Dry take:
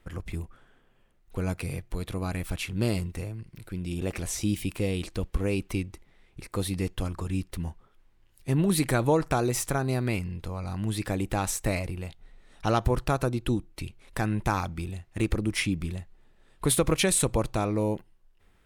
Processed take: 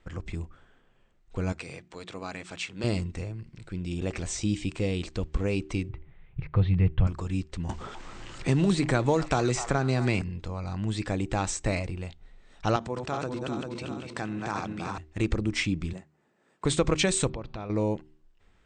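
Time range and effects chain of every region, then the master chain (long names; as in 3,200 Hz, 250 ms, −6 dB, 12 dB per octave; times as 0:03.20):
0:01.52–0:02.84: high-pass filter 160 Hz + low-shelf EQ 390 Hz −7.5 dB + mains-hum notches 60/120/180/240/300/360 Hz
0:05.89–0:07.07: inverse Chebyshev low-pass filter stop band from 8,900 Hz, stop band 60 dB + low shelf with overshoot 190 Hz +8 dB, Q 3
0:07.69–0:10.22: mu-law and A-law mismatch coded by mu + echo through a band-pass that steps 251 ms, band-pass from 970 Hz, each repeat 0.7 octaves, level −11 dB + multiband upward and downward compressor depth 70%
0:12.76–0:14.98: feedback delay that plays each chunk backwards 197 ms, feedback 62%, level −5 dB + downward compressor 2.5 to 1, threshold −27 dBFS + high-pass filter 160 Hz
0:15.93–0:16.65: high-pass filter 160 Hz 24 dB per octave + parametric band 3,600 Hz −9 dB 0.99 octaves
0:17.29–0:17.70: low-pass filter 4,500 Hz 24 dB per octave + downward compressor 5 to 1, threshold −33 dBFS
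whole clip: Butterworth low-pass 8,400 Hz 96 dB per octave; hum removal 76.46 Hz, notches 5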